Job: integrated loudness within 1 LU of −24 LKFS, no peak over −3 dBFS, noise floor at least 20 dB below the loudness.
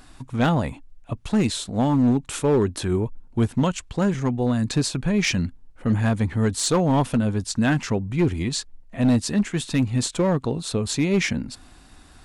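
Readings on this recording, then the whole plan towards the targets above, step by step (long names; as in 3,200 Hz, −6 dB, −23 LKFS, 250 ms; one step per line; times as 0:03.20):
share of clipped samples 1.4%; peaks flattened at −13.5 dBFS; integrated loudness −23.0 LKFS; sample peak −13.5 dBFS; target loudness −24.0 LKFS
→ clipped peaks rebuilt −13.5 dBFS
level −1 dB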